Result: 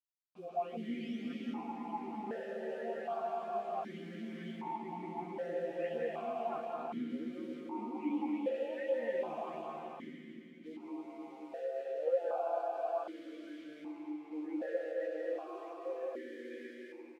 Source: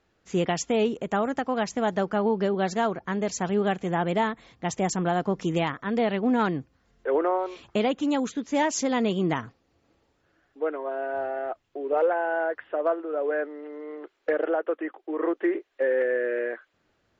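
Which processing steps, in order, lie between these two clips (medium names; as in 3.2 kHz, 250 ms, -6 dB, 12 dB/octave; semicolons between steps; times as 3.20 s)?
delay that grows with frequency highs late, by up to 757 ms; low-pass that closes with the level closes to 1.9 kHz, closed at -23 dBFS; bit crusher 7-bit; doubling 13 ms -3 dB; reverberation RT60 4.2 s, pre-delay 157 ms, DRR -3 dB; stepped vowel filter 1.3 Hz; trim -6 dB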